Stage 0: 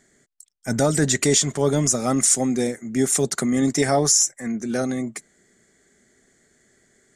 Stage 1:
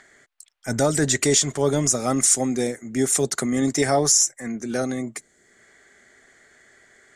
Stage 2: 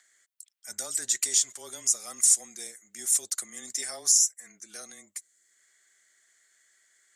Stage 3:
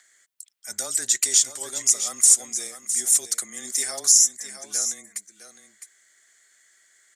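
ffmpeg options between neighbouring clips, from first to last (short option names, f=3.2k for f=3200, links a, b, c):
-filter_complex "[0:a]equalizer=f=190:w=2.3:g=-6,acrossover=split=660|3400[a][b][c];[b]acompressor=mode=upward:threshold=-44dB:ratio=2.5[d];[a][d][c]amix=inputs=3:normalize=0"
-af "afreqshift=-22,aderivative,volume=-2.5dB"
-af "aecho=1:1:659:0.316,volume=5.5dB"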